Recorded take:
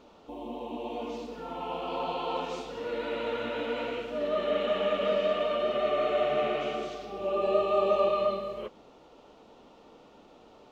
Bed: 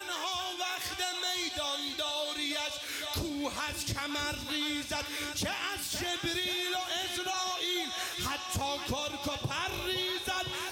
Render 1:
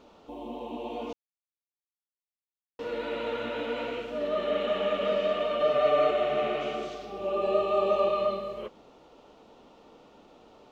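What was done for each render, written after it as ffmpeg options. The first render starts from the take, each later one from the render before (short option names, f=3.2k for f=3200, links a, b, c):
-filter_complex "[0:a]asettb=1/sr,asplit=3[a][b][c];[a]atrim=end=5.604[d];[b]atrim=start=5.6:end=6.11,asetpts=PTS-STARTPTS,afade=t=in:d=0.004:c=qsin,afade=t=out:st=0.506:d=0.004:c=qsin,aecho=1:1:6.7:0.85,atrim=end_sample=22491[e];[c]atrim=start=6.106[f];[d][e]acrossfade=d=0.004:c1=hsin:c2=qsin[g];[g][f]acrossfade=d=0.004:c1=qsin:c2=hsin,asplit=3[h][i][j];[h]atrim=end=1.13,asetpts=PTS-STARTPTS,afade=t=out:st=1.126:d=0.004:c=hsin[k];[i]atrim=start=1.13:end=2.79,asetpts=PTS-STARTPTS,volume=0[l];[j]atrim=start=2.79,asetpts=PTS-STARTPTS,afade=t=in:d=0.004:c=hsin[m];[k][l][m]concat=n=3:v=0:a=1"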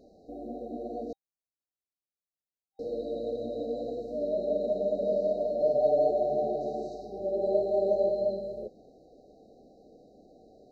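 -af "afftfilt=real='re*(1-between(b*sr/4096,790,3800))':imag='im*(1-between(b*sr/4096,790,3800))':win_size=4096:overlap=0.75,highshelf=f=3.1k:g=-8"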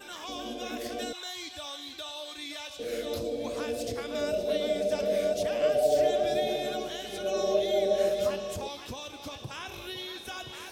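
-filter_complex "[1:a]volume=-6dB[a];[0:a][a]amix=inputs=2:normalize=0"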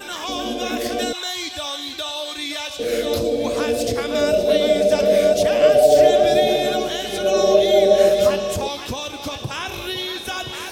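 -af "volume=12dB,alimiter=limit=-3dB:level=0:latency=1"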